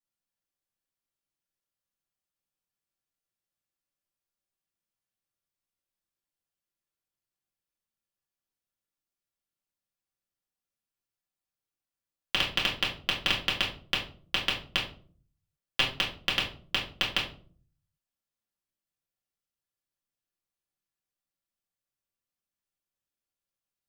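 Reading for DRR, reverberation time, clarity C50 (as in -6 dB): -6.0 dB, 0.45 s, 7.5 dB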